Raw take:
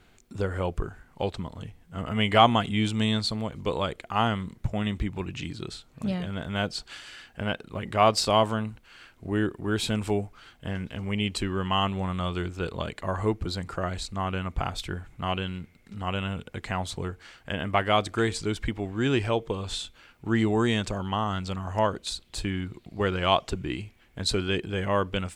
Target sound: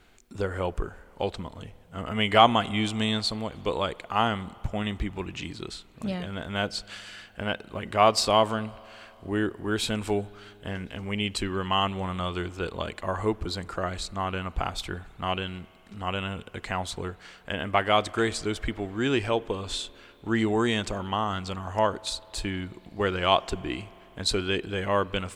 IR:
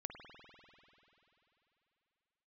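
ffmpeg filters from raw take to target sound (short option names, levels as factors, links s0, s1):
-filter_complex "[0:a]equalizer=f=130:t=o:w=1.4:g=-6,asplit=2[s0][s1];[1:a]atrim=start_sample=2205[s2];[s1][s2]afir=irnorm=-1:irlink=0,volume=0.224[s3];[s0][s3]amix=inputs=2:normalize=0"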